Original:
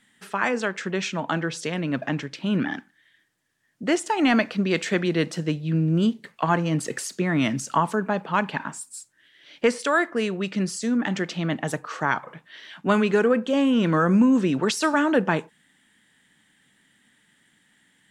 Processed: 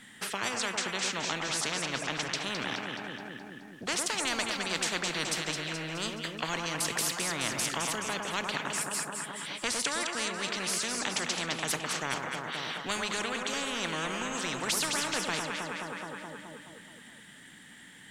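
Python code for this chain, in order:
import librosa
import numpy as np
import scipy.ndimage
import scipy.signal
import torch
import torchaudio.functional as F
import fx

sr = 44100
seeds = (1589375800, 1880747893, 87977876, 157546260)

y = fx.echo_alternate(x, sr, ms=106, hz=1200.0, feedback_pct=73, wet_db=-8.0)
y = fx.spectral_comp(y, sr, ratio=4.0)
y = y * librosa.db_to_amplitude(-6.5)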